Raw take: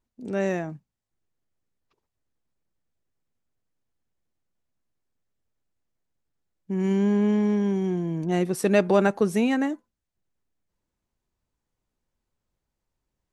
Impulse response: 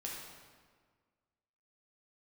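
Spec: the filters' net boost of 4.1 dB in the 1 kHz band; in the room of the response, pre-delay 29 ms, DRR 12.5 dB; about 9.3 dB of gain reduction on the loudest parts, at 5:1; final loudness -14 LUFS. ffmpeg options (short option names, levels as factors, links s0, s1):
-filter_complex "[0:a]equalizer=f=1000:t=o:g=5.5,acompressor=threshold=0.0631:ratio=5,asplit=2[s0][s1];[1:a]atrim=start_sample=2205,adelay=29[s2];[s1][s2]afir=irnorm=-1:irlink=0,volume=0.237[s3];[s0][s3]amix=inputs=2:normalize=0,volume=5.31"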